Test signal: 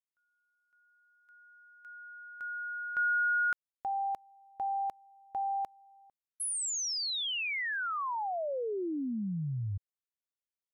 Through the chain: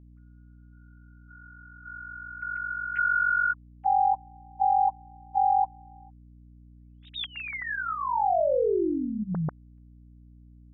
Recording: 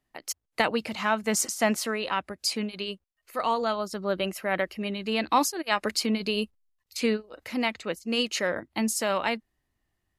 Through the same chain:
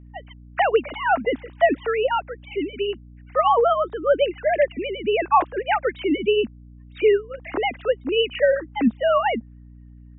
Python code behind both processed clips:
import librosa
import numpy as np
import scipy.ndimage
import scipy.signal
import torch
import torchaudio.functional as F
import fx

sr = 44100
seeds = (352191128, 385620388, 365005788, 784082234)

y = fx.sine_speech(x, sr)
y = fx.high_shelf(y, sr, hz=2900.0, db=-9.0)
y = fx.add_hum(y, sr, base_hz=60, snr_db=22)
y = F.gain(torch.from_numpy(y), 7.5).numpy()